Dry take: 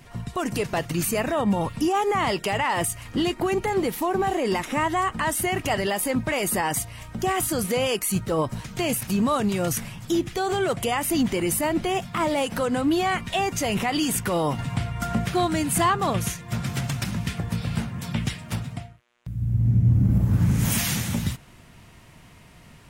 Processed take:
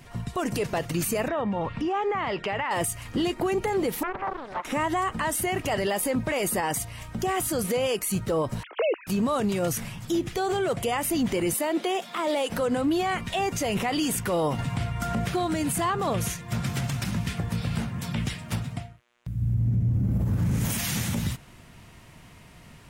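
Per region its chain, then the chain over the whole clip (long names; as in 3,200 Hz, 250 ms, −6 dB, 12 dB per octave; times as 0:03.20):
0:01.28–0:02.71: parametric band 1,700 Hz +4.5 dB 2 octaves + downward compressor 4 to 1, threshold −26 dBFS + low-pass filter 3,300 Hz
0:04.03–0:04.65: resonant band-pass 940 Hz, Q 3.5 + highs frequency-modulated by the lows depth 0.94 ms
0:08.63–0:09.07: three sine waves on the formant tracks + Butterworth high-pass 340 Hz 48 dB per octave + dynamic equaliser 2,000 Hz, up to −5 dB, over −40 dBFS, Q 1.4
0:11.54–0:12.50: high-pass filter 280 Hz 24 dB per octave + parametric band 3,600 Hz +6 dB 0.35 octaves + upward compression, threshold −35 dBFS
whole clip: dynamic equaliser 500 Hz, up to +4 dB, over −36 dBFS, Q 1.7; brickwall limiter −18 dBFS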